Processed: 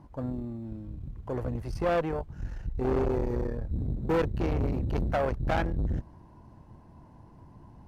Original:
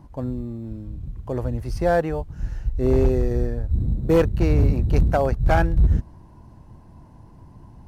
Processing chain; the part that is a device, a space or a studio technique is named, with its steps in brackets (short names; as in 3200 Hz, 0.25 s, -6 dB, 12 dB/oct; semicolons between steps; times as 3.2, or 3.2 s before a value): tube preamp driven hard (tube stage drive 21 dB, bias 0.55; low shelf 150 Hz -5.5 dB; high shelf 4300 Hz -7.5 dB)